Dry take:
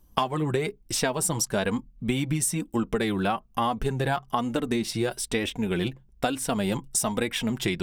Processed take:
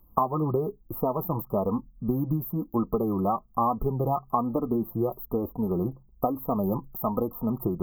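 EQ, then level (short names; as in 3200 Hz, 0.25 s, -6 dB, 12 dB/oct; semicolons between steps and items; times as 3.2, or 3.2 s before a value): brick-wall FIR band-stop 1300–13000 Hz; high shelf 2300 Hz +10.5 dB; 0.0 dB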